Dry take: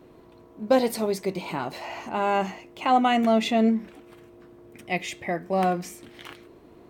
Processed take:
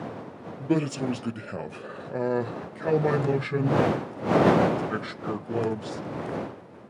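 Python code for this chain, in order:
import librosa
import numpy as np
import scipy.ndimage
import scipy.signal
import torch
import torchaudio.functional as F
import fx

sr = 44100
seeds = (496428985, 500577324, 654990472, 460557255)

y = fx.pitch_heads(x, sr, semitones=-8.5)
y = fx.dmg_wind(y, sr, seeds[0], corner_hz=570.0, level_db=-26.0)
y = scipy.signal.sosfilt(scipy.signal.butter(4, 110.0, 'highpass', fs=sr, output='sos'), y)
y = F.gain(torch.from_numpy(y), -2.5).numpy()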